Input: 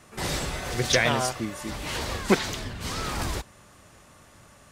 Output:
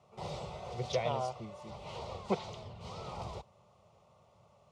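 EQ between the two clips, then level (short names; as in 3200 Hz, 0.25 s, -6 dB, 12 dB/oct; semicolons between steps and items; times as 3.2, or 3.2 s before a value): HPF 120 Hz 12 dB/oct; tape spacing loss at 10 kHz 27 dB; fixed phaser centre 690 Hz, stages 4; -4.0 dB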